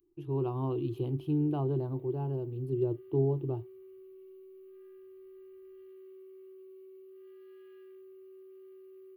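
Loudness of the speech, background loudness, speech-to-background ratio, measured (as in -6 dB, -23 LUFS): -32.5 LUFS, -52.5 LUFS, 20.0 dB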